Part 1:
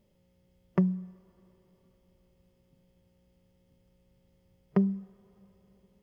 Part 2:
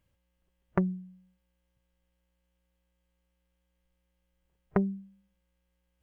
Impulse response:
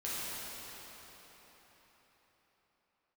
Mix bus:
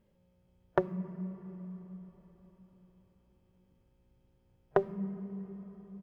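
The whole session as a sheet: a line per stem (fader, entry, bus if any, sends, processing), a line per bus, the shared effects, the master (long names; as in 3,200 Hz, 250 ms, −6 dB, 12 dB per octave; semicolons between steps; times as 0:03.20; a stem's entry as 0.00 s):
−3.0 dB, 0.00 s, send −10.5 dB, no processing
+2.5 dB, 0.6 ms, no send, high-pass filter 210 Hz 24 dB per octave; leveller curve on the samples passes 1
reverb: on, RT60 4.7 s, pre-delay 6 ms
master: high-shelf EQ 2,200 Hz −9.5 dB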